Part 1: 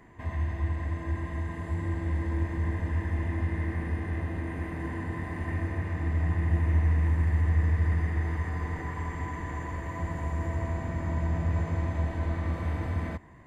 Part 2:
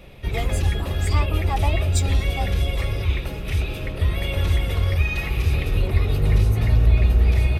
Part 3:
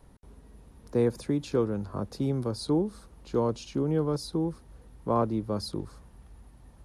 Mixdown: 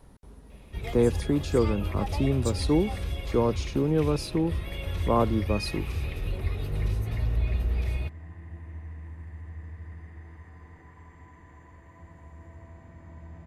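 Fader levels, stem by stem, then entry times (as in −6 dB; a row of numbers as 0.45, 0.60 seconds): −16.5, −10.5, +2.5 decibels; 2.00, 0.50, 0.00 seconds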